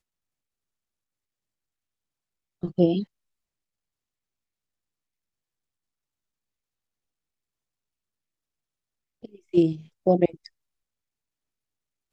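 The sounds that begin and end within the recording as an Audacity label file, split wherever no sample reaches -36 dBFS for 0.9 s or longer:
2.630000	3.040000	sound
9.240000	10.460000	sound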